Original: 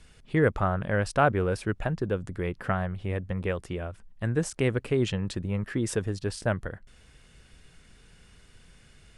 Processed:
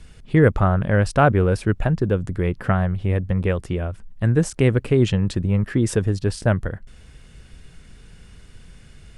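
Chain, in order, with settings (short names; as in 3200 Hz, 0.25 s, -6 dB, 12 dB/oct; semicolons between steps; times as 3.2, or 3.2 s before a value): low shelf 300 Hz +7 dB; gain +4.5 dB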